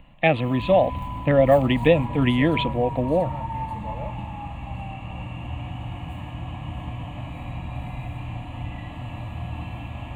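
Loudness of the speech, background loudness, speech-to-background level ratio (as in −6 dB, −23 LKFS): −21.0 LKFS, −33.0 LKFS, 12.0 dB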